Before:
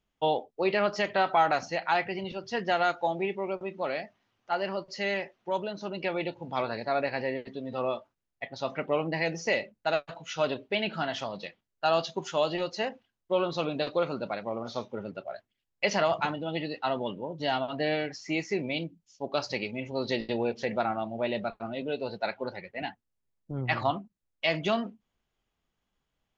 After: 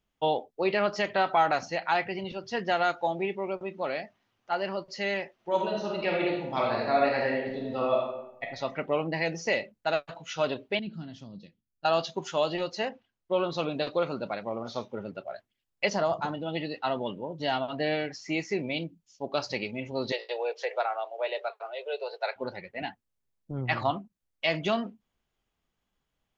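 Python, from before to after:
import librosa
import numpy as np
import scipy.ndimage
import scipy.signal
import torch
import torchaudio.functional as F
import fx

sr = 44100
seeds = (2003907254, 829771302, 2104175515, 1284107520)

y = fx.reverb_throw(x, sr, start_s=5.34, length_s=3.09, rt60_s=0.88, drr_db=-1.5)
y = fx.curve_eq(y, sr, hz=(240.0, 710.0, 2000.0, 4500.0), db=(0, -23, -22, -13), at=(10.79, 11.85))
y = fx.air_absorb(y, sr, metres=59.0, at=(12.9, 13.44))
y = fx.peak_eq(y, sr, hz=2400.0, db=-14.0, octaves=1.0, at=(15.88, 16.32), fade=0.02)
y = fx.steep_highpass(y, sr, hz=410.0, slope=72, at=(20.12, 22.36))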